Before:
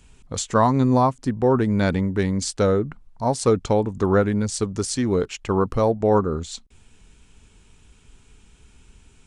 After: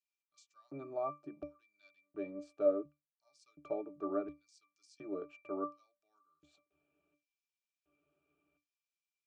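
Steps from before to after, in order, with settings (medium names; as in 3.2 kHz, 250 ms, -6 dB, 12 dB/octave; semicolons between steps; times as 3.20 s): LFO high-pass square 0.7 Hz 480–5000 Hz; pitch-class resonator D, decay 0.22 s; trim -1.5 dB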